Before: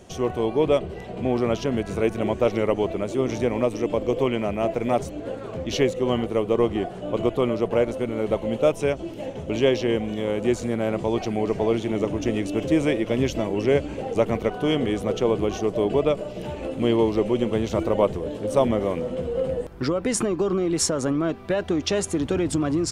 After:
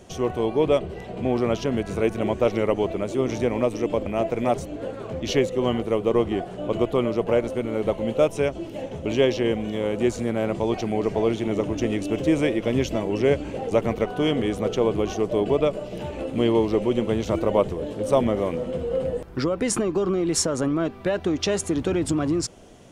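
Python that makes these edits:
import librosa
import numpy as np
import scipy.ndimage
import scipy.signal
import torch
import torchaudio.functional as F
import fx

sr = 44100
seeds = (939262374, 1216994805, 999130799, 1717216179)

y = fx.edit(x, sr, fx.cut(start_s=4.06, length_s=0.44), tone=tone)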